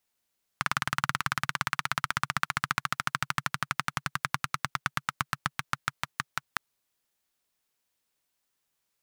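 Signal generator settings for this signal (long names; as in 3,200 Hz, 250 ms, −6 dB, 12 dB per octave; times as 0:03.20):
pulse-train model of a single-cylinder engine, changing speed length 5.96 s, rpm 2,300, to 600, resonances 140/1,300 Hz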